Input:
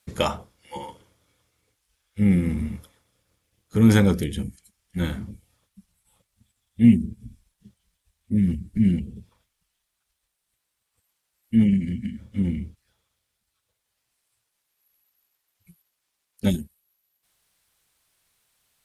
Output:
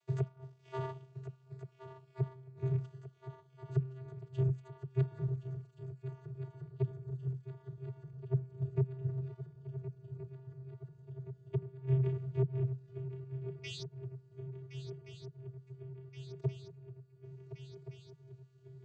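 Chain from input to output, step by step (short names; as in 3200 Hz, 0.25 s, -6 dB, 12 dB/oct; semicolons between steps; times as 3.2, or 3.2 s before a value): painted sound rise, 13.63–13.83, 2400–5000 Hz -34 dBFS; in parallel at +1 dB: compressor 12:1, threshold -28 dBFS, peak gain reduction 19.5 dB; on the sum: half-wave rectifier; notches 50/100/150 Hz; soft clip -5.5 dBFS, distortion -23 dB; flipped gate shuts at -13 dBFS, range -29 dB; vocoder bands 16, square 131 Hz; swung echo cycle 1.424 s, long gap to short 3:1, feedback 71%, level -12 dB; gain +1 dB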